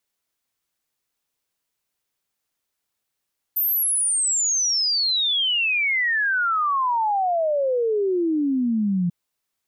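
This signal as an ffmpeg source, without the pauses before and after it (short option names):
-f lavfi -i "aevalsrc='0.119*clip(min(t,5.54-t)/0.01,0,1)*sin(2*PI*14000*5.54/log(170/14000)*(exp(log(170/14000)*t/5.54)-1))':d=5.54:s=44100"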